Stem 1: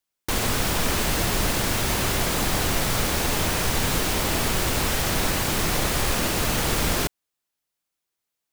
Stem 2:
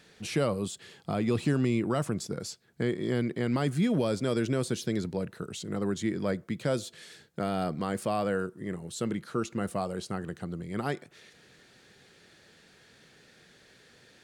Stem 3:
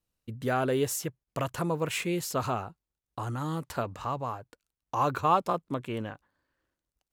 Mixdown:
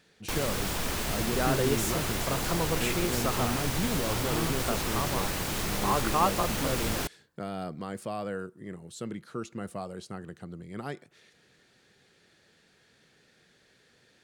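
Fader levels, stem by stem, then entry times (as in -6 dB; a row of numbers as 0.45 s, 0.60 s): -8.0 dB, -5.5 dB, -1.5 dB; 0.00 s, 0.00 s, 0.90 s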